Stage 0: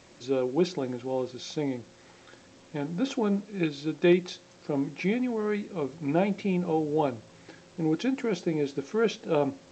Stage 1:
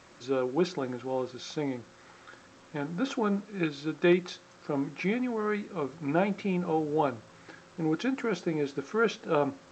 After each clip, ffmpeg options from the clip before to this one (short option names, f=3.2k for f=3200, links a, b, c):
-af "equalizer=f=1.3k:w=1.5:g=9,volume=-2.5dB"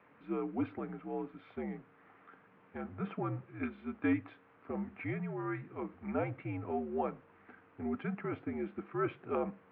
-af "highpass=f=200:t=q:w=0.5412,highpass=f=200:t=q:w=1.307,lowpass=f=2.6k:t=q:w=0.5176,lowpass=f=2.6k:t=q:w=0.7071,lowpass=f=2.6k:t=q:w=1.932,afreqshift=-75,volume=-7.5dB"